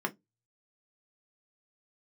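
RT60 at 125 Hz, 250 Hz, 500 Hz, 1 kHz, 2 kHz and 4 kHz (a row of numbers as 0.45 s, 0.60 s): 0.30 s, 0.20 s, 0.20 s, 0.15 s, 0.10 s, 0.15 s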